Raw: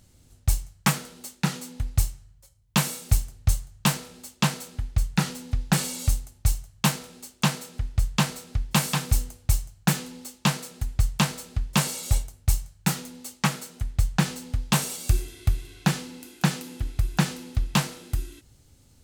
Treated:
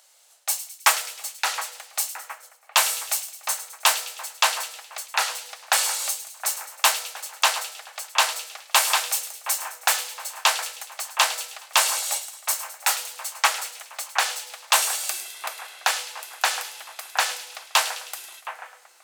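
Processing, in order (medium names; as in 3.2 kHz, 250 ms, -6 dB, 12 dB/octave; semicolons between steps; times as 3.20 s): steep high-pass 610 Hz 36 dB/octave; two-band feedback delay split 2.3 kHz, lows 717 ms, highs 105 ms, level -12 dB; trim +7 dB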